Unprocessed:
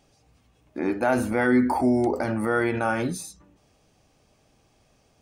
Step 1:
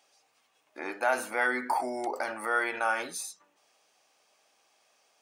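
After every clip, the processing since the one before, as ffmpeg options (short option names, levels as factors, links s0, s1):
-af "highpass=780"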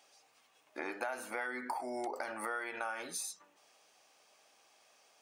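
-af "acompressor=threshold=0.0141:ratio=8,volume=1.19"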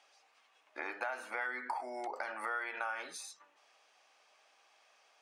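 -af "bandpass=f=1600:t=q:w=0.54:csg=0,volume=1.26"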